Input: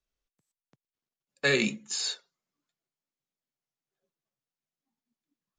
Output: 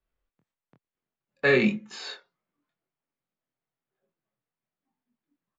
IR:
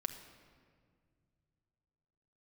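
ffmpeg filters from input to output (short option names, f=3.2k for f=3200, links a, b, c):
-filter_complex "[0:a]lowpass=2.2k,asplit=2[a][b];[b]adelay=24,volume=-3.5dB[c];[a][c]amix=inputs=2:normalize=0,volume=4dB"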